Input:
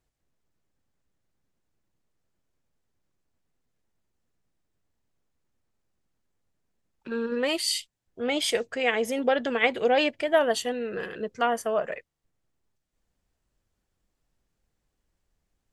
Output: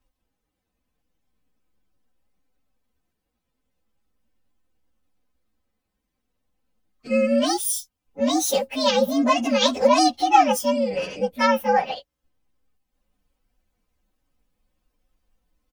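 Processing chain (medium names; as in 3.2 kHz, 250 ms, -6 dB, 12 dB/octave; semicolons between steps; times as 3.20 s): frequency axis rescaled in octaves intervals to 125%; comb 3.9 ms, depth 55%; trim +7.5 dB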